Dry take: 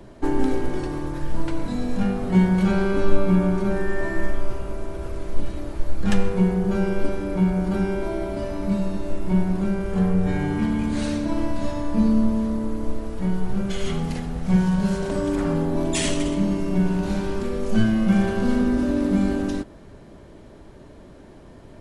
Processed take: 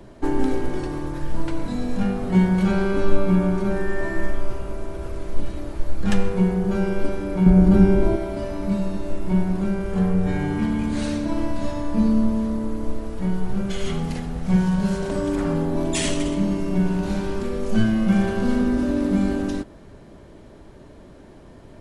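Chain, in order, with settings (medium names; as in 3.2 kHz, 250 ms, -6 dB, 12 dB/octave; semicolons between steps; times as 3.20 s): 7.46–8.16 s: bass shelf 430 Hz +11.5 dB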